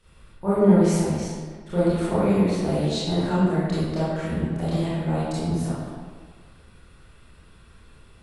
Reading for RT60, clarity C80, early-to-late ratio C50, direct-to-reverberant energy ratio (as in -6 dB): 1.6 s, -1.0 dB, -4.5 dB, -11.5 dB